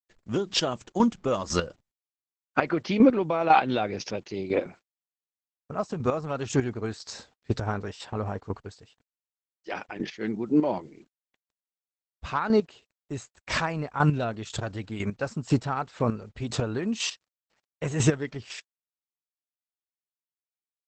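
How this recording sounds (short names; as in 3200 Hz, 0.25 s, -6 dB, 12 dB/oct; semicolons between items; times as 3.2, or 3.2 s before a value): chopped level 2 Hz, depth 65%, duty 20%; a quantiser's noise floor 12-bit, dither none; Opus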